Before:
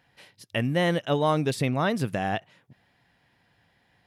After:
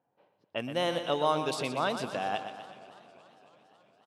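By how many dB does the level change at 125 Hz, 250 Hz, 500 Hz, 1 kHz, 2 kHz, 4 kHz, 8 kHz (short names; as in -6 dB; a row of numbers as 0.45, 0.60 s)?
-14.5, -9.5, -4.0, -2.0, -6.0, -1.0, -2.5 dB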